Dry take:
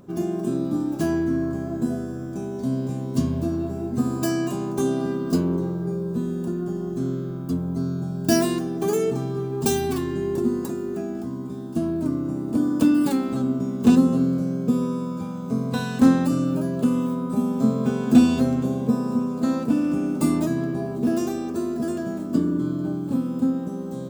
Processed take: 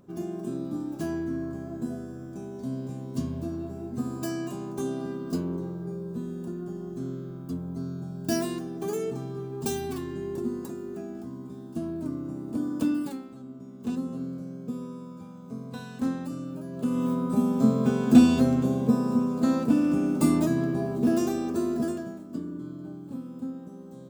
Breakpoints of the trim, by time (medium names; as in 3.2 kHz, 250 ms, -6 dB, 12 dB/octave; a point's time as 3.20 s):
12.93 s -8 dB
13.36 s -20 dB
14.24 s -13 dB
16.65 s -13 dB
17.09 s -1 dB
21.81 s -1 dB
22.24 s -13 dB